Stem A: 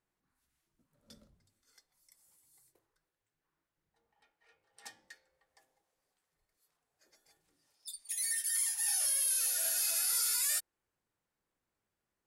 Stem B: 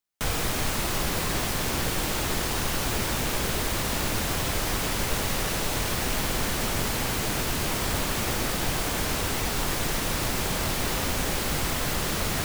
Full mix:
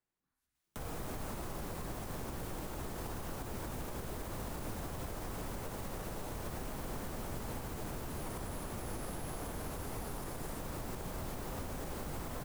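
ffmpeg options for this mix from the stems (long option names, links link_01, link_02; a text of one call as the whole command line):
ffmpeg -i stem1.wav -i stem2.wav -filter_complex "[0:a]volume=-5.5dB[link_01];[1:a]adelay=550,volume=-2dB[link_02];[link_01][link_02]amix=inputs=2:normalize=0,acrossover=split=92|1300|7400[link_03][link_04][link_05][link_06];[link_03]acompressor=threshold=-37dB:ratio=4[link_07];[link_04]acompressor=threshold=-37dB:ratio=4[link_08];[link_05]acompressor=threshold=-55dB:ratio=4[link_09];[link_06]acompressor=threshold=-48dB:ratio=4[link_10];[link_07][link_08][link_09][link_10]amix=inputs=4:normalize=0,alimiter=level_in=7.5dB:limit=-24dB:level=0:latency=1:release=148,volume=-7.5dB" out.wav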